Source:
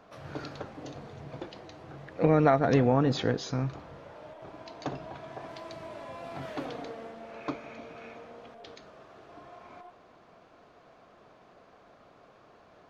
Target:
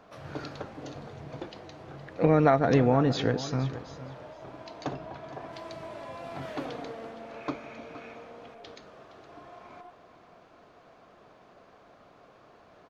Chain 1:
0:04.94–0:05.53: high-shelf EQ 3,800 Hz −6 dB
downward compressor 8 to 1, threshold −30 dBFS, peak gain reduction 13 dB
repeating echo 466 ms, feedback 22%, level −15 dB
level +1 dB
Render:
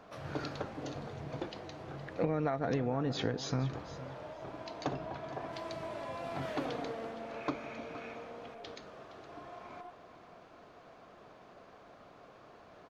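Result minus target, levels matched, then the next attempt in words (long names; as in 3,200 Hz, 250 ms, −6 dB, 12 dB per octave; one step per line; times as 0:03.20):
downward compressor: peak gain reduction +13 dB
0:04.94–0:05.53: high-shelf EQ 3,800 Hz −6 dB
repeating echo 466 ms, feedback 22%, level −15 dB
level +1 dB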